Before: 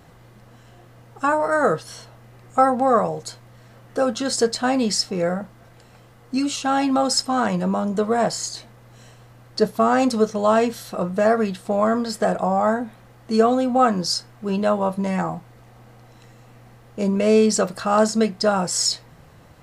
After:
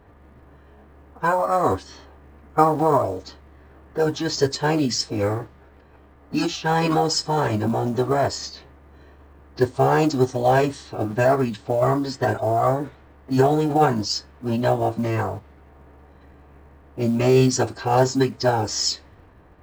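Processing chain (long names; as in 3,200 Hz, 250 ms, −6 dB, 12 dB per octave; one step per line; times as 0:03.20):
low-pass that shuts in the quiet parts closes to 1,800 Hz, open at −17 dBFS
phase-vocoder pitch shift with formants kept −9 semitones
floating-point word with a short mantissa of 4 bits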